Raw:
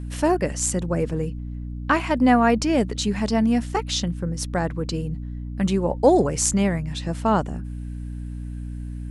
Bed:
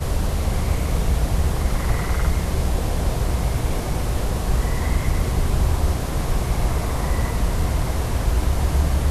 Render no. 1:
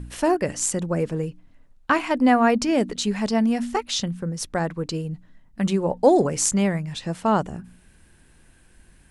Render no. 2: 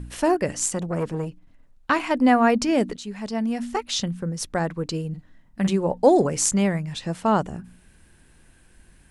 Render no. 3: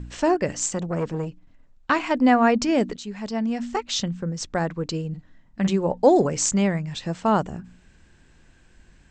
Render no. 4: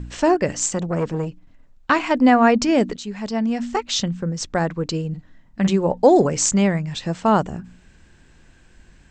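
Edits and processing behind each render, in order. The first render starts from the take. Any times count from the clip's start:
de-hum 60 Hz, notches 5
0.66–2 core saturation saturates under 960 Hz; 2.97–4.02 fade in, from -12.5 dB; 5.09–5.69 doubler 47 ms -8 dB
steep low-pass 8000 Hz 96 dB/oct
gain +3.5 dB; limiter -3 dBFS, peak gain reduction 2 dB

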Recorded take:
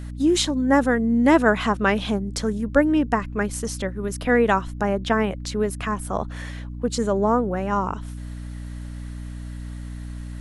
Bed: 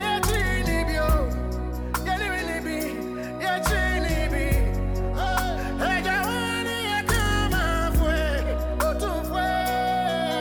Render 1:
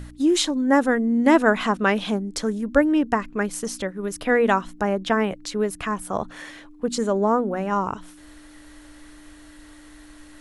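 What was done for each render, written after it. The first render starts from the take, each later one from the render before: de-hum 60 Hz, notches 4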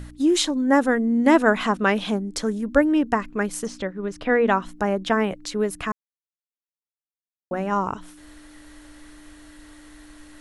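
3.67–4.62 air absorption 110 m; 5.92–7.51 mute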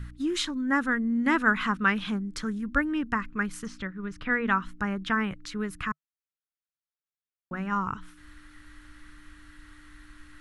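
EQ curve 150 Hz 0 dB, 650 Hz -19 dB, 1300 Hz +1 dB, 7500 Hz -11 dB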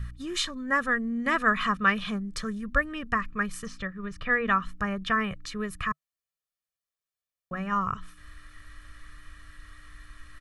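comb 1.7 ms, depth 66%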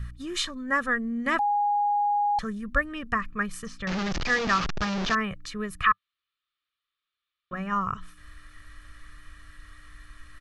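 1.39–2.39 bleep 823 Hz -21 dBFS; 3.87–5.15 delta modulation 32 kbps, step -22 dBFS; 5.84–7.53 EQ curve 100 Hz 0 dB, 190 Hz -11 dB, 310 Hz +3 dB, 830 Hz -11 dB, 1200 Hz +14 dB, 1700 Hz +8 dB, 3700 Hz +14 dB, 6400 Hz -13 dB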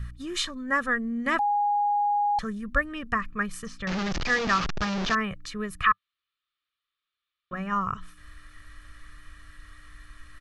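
nothing audible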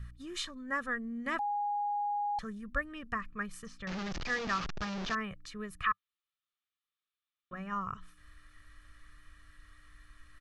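gain -9 dB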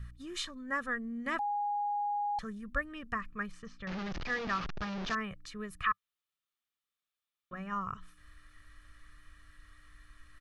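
3.51–5.07 air absorption 110 m

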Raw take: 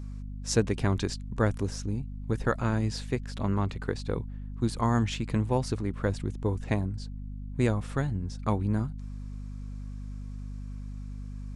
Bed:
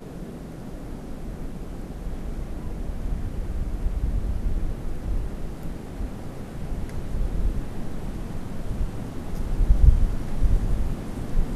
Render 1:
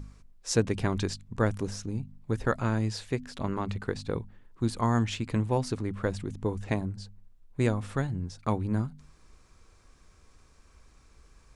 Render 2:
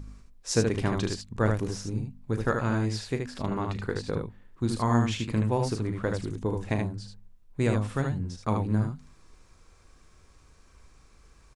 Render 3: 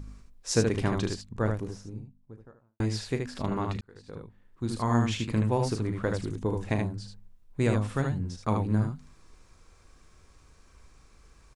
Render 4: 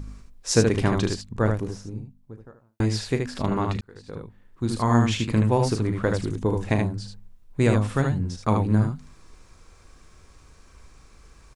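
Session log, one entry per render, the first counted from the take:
de-hum 50 Hz, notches 5
early reflections 37 ms -11 dB, 76 ms -4.5 dB
0.74–2.8 studio fade out; 3.81–5.13 fade in
gain +5.5 dB

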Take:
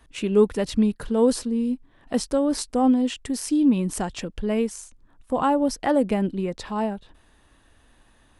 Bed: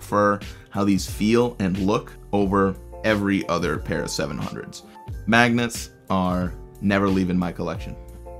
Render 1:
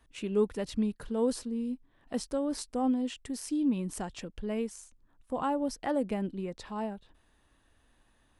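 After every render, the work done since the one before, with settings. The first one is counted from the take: gain -9.5 dB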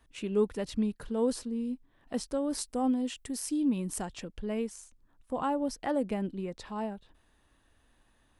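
2.44–4.06 high shelf 8700 Hz +9.5 dB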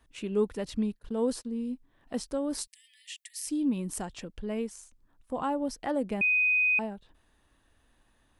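0.99–1.45 gate -43 dBFS, range -39 dB; 2.67–3.47 brick-wall FIR high-pass 1700 Hz; 6.21–6.79 bleep 2500 Hz -21.5 dBFS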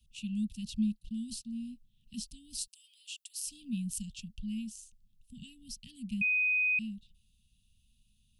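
dynamic EQ 2900 Hz, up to +5 dB, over -38 dBFS, Q 1.5; Chebyshev band-stop 220–2700 Hz, order 5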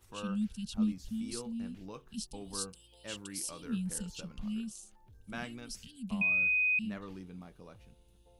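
add bed -25.5 dB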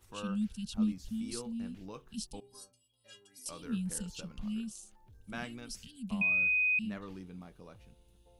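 2.4–3.46 metallic resonator 120 Hz, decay 0.64 s, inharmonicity 0.03

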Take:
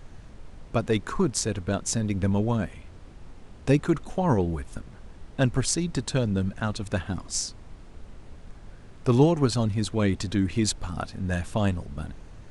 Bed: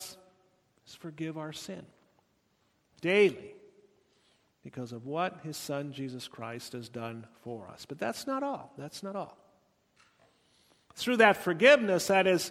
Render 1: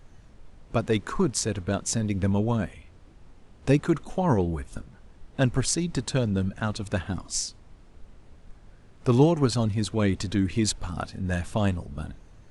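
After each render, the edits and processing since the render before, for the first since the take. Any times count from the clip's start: noise print and reduce 6 dB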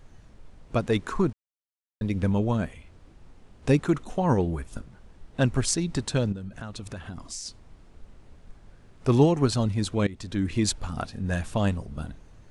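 1.33–2.01 mute; 6.32–7.46 compressor, threshold -33 dBFS; 10.07–10.53 fade in, from -19 dB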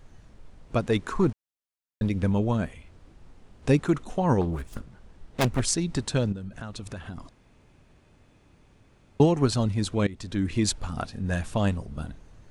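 1.22–2.09 sample leveller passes 1; 4.41–5.6 self-modulated delay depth 0.97 ms; 7.29–9.2 room tone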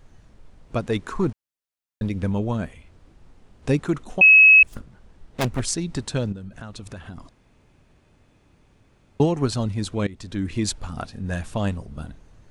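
4.21–4.63 bleep 2570 Hz -7.5 dBFS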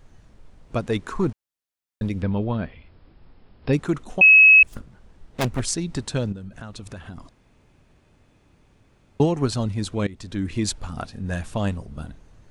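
2.22–3.73 brick-wall FIR low-pass 5400 Hz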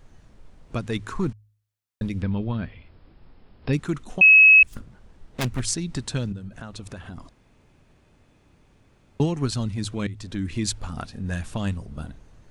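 de-hum 52.58 Hz, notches 2; dynamic EQ 600 Hz, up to -8 dB, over -37 dBFS, Q 0.75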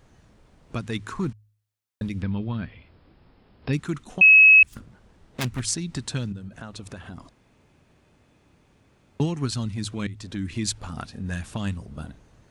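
HPF 73 Hz 6 dB/oct; dynamic EQ 540 Hz, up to -5 dB, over -39 dBFS, Q 1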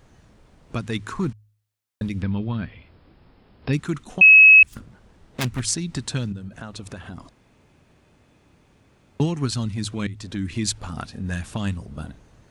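gain +2.5 dB

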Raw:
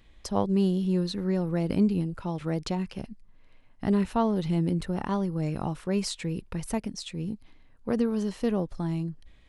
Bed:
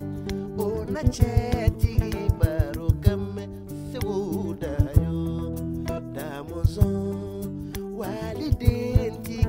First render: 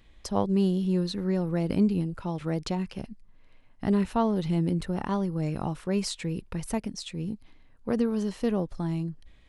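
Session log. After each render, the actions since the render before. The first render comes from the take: nothing audible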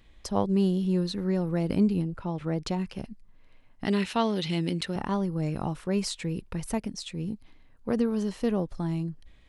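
2.02–2.66 high shelf 4200 Hz -9.5 dB; 3.85–4.96 weighting filter D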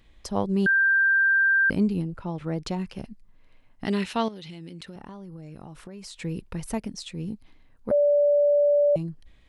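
0.66–1.7 bleep 1580 Hz -17 dBFS; 4.28–6.21 compressor 12:1, threshold -37 dBFS; 7.91–8.96 bleep 581 Hz -16.5 dBFS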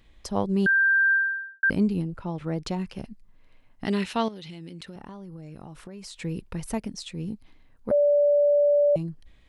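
1.13–1.63 fade out quadratic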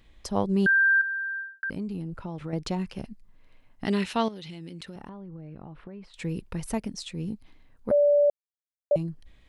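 1.01–2.53 compressor 5:1, threshold -30 dBFS; 5.09–6.14 air absorption 420 m; 8.3–8.91 mute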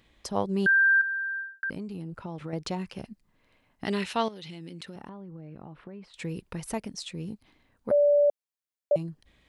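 HPF 120 Hz 6 dB/oct; dynamic EQ 240 Hz, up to -4 dB, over -38 dBFS, Q 1.3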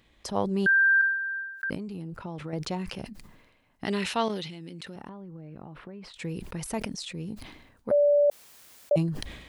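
sustainer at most 56 dB/s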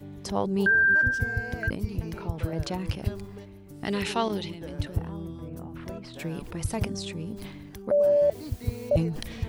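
add bed -10 dB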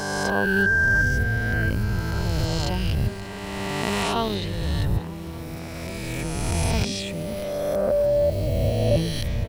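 spectral swells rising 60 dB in 2.75 s; feedback echo 0.586 s, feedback 56%, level -18.5 dB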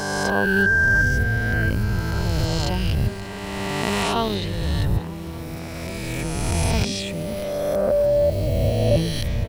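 gain +2 dB

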